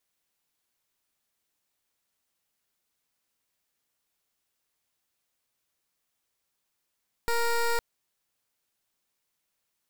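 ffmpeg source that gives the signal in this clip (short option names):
-f lavfi -i "aevalsrc='0.0531*(2*lt(mod(468*t,1),0.15)-1)':d=0.51:s=44100"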